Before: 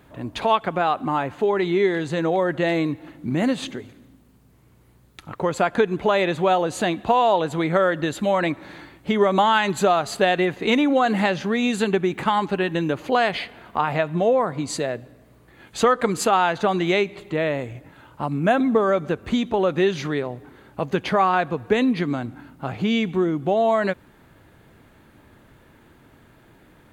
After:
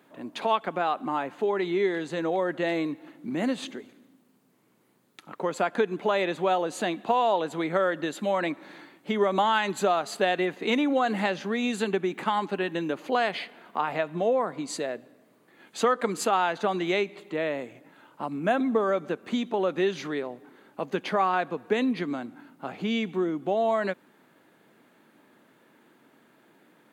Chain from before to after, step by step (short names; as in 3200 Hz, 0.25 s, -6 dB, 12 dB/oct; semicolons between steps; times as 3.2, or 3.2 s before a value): HPF 190 Hz 24 dB/oct; gain -5.5 dB